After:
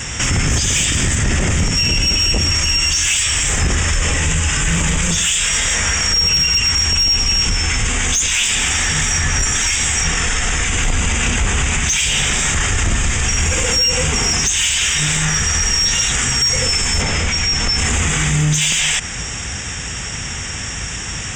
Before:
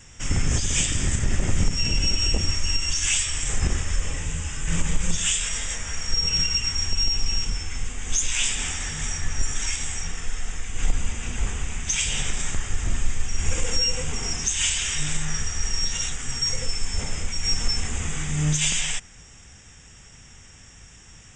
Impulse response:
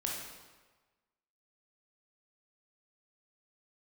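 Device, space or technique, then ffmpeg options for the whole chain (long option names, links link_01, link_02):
mastering chain: -filter_complex "[0:a]highpass=43,equalizer=frequency=2100:width_type=o:width=2.4:gain=3.5,acompressor=threshold=-27dB:ratio=2,asoftclip=type=tanh:threshold=-17dB,alimiter=level_in=29.5dB:limit=-1dB:release=50:level=0:latency=1,asettb=1/sr,asplit=3[link_01][link_02][link_03];[link_01]atrim=end=17.024[link_04];[link_02]atrim=start=17.02:end=17.78,asetpts=PTS-STARTPTS,afade=type=in:duration=0.004:curve=qsin,afade=type=out:start_time=0.756:duration=0.004:curve=qsin,lowpass=6300[link_05];[link_03]atrim=start=17.776[link_06];[link_04][link_05]acrossfade=duration=0.004:curve1=hsin:curve2=qsin[link_07];[link_07][link_06]acrossfade=duration=0.004:curve1=qsin:curve2=hsin,volume=-7.5dB"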